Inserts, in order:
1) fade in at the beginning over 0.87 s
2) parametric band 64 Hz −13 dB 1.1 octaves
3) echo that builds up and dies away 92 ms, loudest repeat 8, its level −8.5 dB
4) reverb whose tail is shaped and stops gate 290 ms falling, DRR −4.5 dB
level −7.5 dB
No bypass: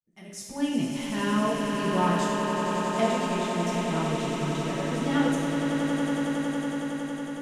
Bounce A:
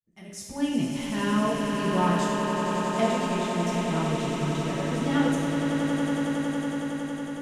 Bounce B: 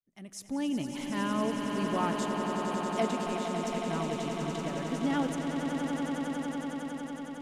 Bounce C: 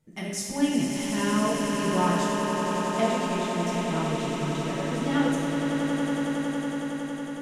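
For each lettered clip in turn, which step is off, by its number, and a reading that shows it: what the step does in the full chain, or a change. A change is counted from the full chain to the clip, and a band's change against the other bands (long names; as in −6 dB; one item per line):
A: 2, 125 Hz band +2.0 dB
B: 4, echo-to-direct ratio 10.5 dB to 3.0 dB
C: 1, 8 kHz band +3.5 dB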